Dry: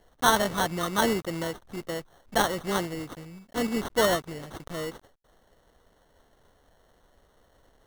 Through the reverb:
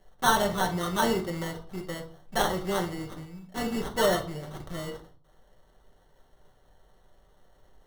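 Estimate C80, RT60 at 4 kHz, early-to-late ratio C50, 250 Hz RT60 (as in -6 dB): 17.0 dB, 0.35 s, 11.5 dB, 0.55 s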